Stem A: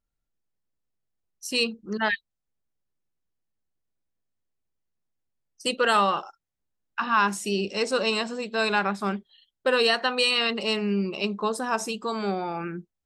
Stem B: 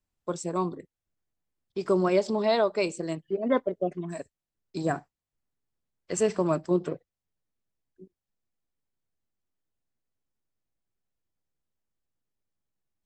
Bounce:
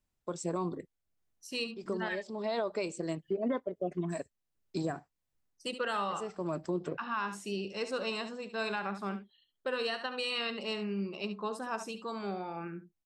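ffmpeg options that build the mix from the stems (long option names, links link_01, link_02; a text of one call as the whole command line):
ffmpeg -i stem1.wav -i stem2.wav -filter_complex "[0:a]highshelf=frequency=5600:gain=-7,volume=-9.5dB,asplit=3[link_01][link_02][link_03];[link_02]volume=-11dB[link_04];[1:a]tremolo=f=1.5:d=0.42,volume=1.5dB[link_05];[link_03]apad=whole_len=575600[link_06];[link_05][link_06]sidechaincompress=threshold=-53dB:ratio=3:attack=41:release=390[link_07];[link_04]aecho=0:1:71:1[link_08];[link_01][link_07][link_08]amix=inputs=3:normalize=0,alimiter=limit=-24dB:level=0:latency=1:release=153" out.wav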